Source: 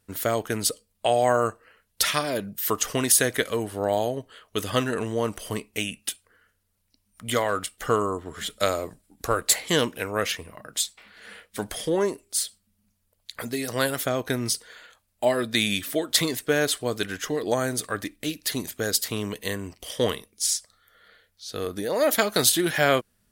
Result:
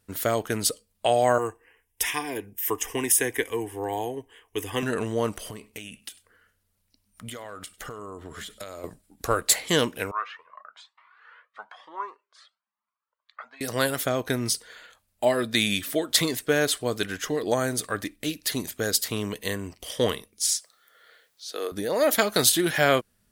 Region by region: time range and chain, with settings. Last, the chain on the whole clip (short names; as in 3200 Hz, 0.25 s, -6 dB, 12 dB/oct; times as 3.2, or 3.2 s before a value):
1.38–4.83 bell 5100 Hz +6 dB 0.26 oct + fixed phaser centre 890 Hz, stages 8
5.5–8.84 compressor 16:1, threshold -34 dBFS + echo 99 ms -21.5 dB
10.11–13.61 resonant high-pass 1100 Hz, resonance Q 4.2 + tape spacing loss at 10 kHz 42 dB + cascading flanger rising 1.1 Hz
20.54–21.72 HPF 330 Hz 24 dB/oct + requantised 12-bit, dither triangular
whole clip: dry